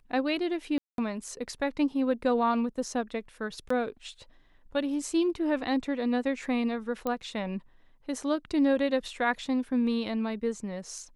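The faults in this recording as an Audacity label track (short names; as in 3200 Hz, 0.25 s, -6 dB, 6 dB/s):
0.780000	0.980000	gap 0.202 s
3.690000	3.700000	gap 14 ms
7.070000	7.070000	pop -18 dBFS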